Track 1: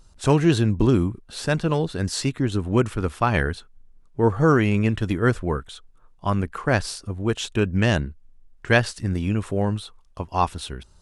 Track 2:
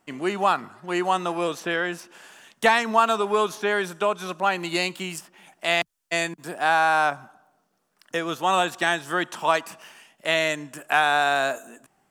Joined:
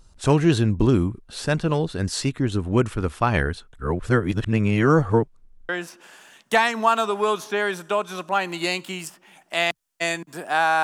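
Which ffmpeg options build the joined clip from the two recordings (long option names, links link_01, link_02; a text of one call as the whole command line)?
ffmpeg -i cue0.wav -i cue1.wav -filter_complex "[0:a]apad=whole_dur=10.83,atrim=end=10.83,asplit=2[link_01][link_02];[link_01]atrim=end=3.732[link_03];[link_02]atrim=start=3.728:end=5.692,asetpts=PTS-STARTPTS,areverse[link_04];[1:a]atrim=start=1.798:end=6.94[link_05];[link_03][link_04]acrossfade=duration=0.004:curve1=hsin:curve2=hsin[link_06];[link_06][link_05]acrossfade=duration=0.004:curve1=hsin:curve2=hsin" out.wav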